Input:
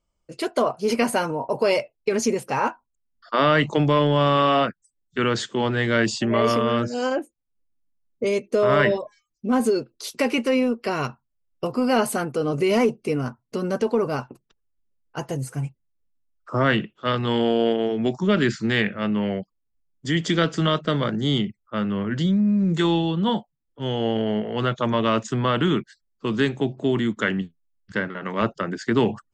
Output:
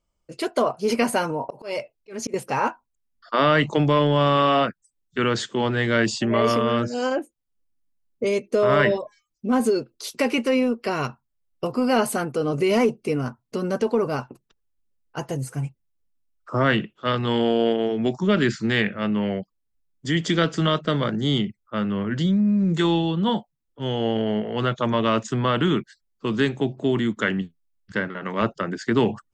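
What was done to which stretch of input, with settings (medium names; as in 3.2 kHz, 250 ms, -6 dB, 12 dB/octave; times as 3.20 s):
1.11–2.34 s: slow attack 276 ms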